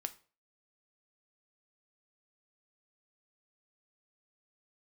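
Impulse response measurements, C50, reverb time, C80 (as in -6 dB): 17.0 dB, 0.40 s, 22.0 dB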